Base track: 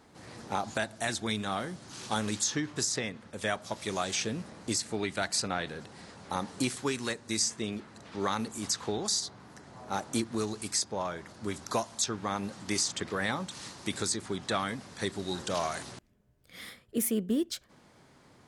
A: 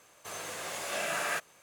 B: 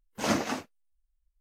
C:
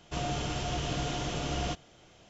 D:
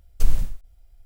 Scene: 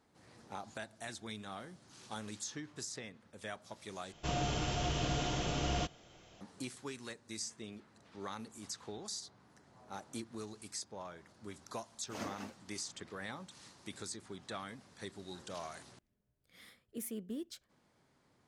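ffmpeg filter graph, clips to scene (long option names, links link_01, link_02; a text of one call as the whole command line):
ffmpeg -i bed.wav -i cue0.wav -i cue1.wav -i cue2.wav -filter_complex "[0:a]volume=-13dB,asplit=2[link_01][link_02];[link_01]atrim=end=4.124[link_03];[3:a]atrim=end=2.29,asetpts=PTS-STARTPTS,volume=-2dB[link_04];[link_02]atrim=start=6.406[link_05];[2:a]atrim=end=1.4,asetpts=PTS-STARTPTS,volume=-16dB,afade=type=in:duration=0.004:curve=hsin,afade=type=out:start_time=1.396:duration=0.004:curve=hsin,adelay=11910[link_06];[link_03][link_04]acrossfade=duration=0.004:curve1=hsin:curve2=hsin[link_07];[link_07][link_05]acrossfade=duration=0.004:curve1=hsin:curve2=hsin[link_08];[link_08][link_06]amix=inputs=2:normalize=0" out.wav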